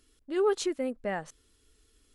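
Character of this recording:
background noise floor −69 dBFS
spectral slope −4.0 dB per octave

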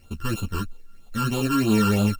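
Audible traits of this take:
a buzz of ramps at a fixed pitch in blocks of 32 samples
phaser sweep stages 12, 3.1 Hz, lowest notch 650–1,900 Hz
a quantiser's noise floor 12 bits, dither triangular
a shimmering, thickened sound

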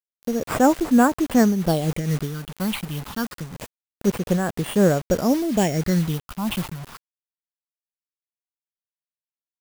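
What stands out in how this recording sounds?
aliases and images of a low sample rate 6,200 Hz, jitter 0%
phaser sweep stages 6, 0.27 Hz, lowest notch 450–4,900 Hz
a quantiser's noise floor 6 bits, dither none
amplitude modulation by smooth noise

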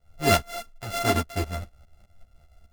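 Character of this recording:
a buzz of ramps at a fixed pitch in blocks of 64 samples
tremolo saw up 4.9 Hz, depth 75%
a shimmering, thickened sound

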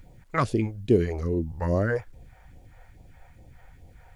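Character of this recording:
phaser sweep stages 2, 2.4 Hz, lowest notch 220–1,500 Hz
a quantiser's noise floor 12 bits, dither none

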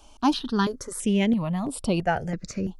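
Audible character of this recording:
notches that jump at a steady rate 3 Hz 520–6,400 Hz

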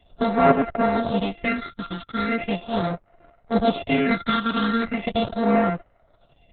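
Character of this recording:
a buzz of ramps at a fixed pitch in blocks of 64 samples
phaser sweep stages 6, 0.39 Hz, lowest notch 600–3,600 Hz
Opus

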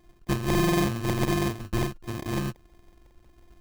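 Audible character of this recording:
a buzz of ramps at a fixed pitch in blocks of 128 samples
phaser sweep stages 4, 1.5 Hz, lowest notch 550–1,100 Hz
aliases and images of a low sample rate 1,400 Hz, jitter 0%

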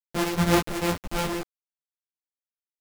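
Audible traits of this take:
a buzz of ramps at a fixed pitch in blocks of 256 samples
tremolo saw down 5.3 Hz, depth 30%
a quantiser's noise floor 6 bits, dither none
a shimmering, thickened sound

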